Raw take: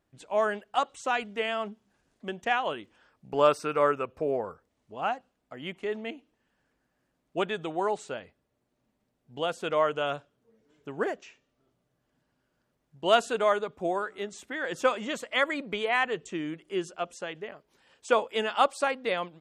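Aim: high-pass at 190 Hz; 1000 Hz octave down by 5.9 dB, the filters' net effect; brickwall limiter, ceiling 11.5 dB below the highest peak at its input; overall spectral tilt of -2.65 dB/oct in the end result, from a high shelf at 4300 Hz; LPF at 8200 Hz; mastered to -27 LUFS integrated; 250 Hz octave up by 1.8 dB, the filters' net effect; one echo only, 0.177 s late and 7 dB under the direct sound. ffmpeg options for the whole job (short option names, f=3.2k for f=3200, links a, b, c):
-af "highpass=190,lowpass=8.2k,equalizer=f=250:t=o:g=4.5,equalizer=f=1k:t=o:g=-8.5,highshelf=f=4.3k:g=-4,alimiter=limit=-23.5dB:level=0:latency=1,aecho=1:1:177:0.447,volume=8dB"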